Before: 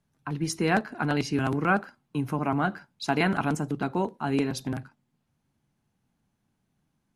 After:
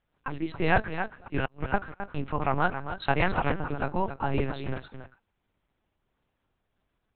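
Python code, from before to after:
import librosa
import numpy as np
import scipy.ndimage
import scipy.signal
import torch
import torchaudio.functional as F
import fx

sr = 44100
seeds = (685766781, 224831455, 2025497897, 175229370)

y = fx.highpass(x, sr, hz=390.0, slope=6)
y = fx.gate_flip(y, sr, shuts_db=-19.0, range_db=-35, at=(0.93, 1.74))
y = fx.air_absorb(y, sr, metres=160.0, at=(3.13, 4.57))
y = y + 10.0 ** (-9.5 / 20.0) * np.pad(y, (int(271 * sr / 1000.0), 0))[:len(y)]
y = fx.lpc_vocoder(y, sr, seeds[0], excitation='pitch_kept', order=8)
y = y * librosa.db_to_amplitude(3.5)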